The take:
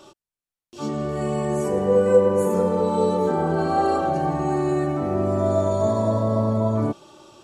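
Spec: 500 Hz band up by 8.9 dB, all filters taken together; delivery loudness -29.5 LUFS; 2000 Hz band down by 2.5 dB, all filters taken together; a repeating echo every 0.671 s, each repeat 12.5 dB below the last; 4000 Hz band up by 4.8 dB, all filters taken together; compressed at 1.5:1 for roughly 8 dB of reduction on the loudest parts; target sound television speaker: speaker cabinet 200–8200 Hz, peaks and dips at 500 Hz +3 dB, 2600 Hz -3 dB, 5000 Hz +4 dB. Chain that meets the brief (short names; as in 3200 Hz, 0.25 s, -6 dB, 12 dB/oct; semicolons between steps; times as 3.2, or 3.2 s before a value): bell 500 Hz +8 dB; bell 2000 Hz -5 dB; bell 4000 Hz +6 dB; compressor 1.5:1, threshold -25 dBFS; speaker cabinet 200–8200 Hz, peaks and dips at 500 Hz +3 dB, 2600 Hz -3 dB, 5000 Hz +4 dB; feedback echo 0.671 s, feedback 24%, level -12.5 dB; gain -9.5 dB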